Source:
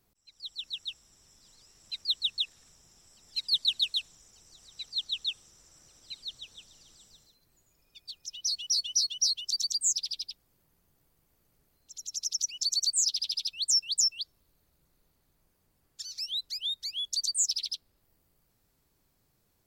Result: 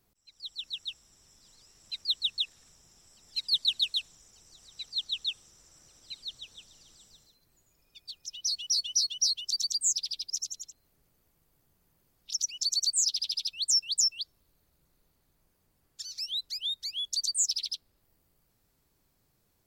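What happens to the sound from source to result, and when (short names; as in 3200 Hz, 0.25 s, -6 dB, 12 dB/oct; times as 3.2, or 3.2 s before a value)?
10.3–12.31 reverse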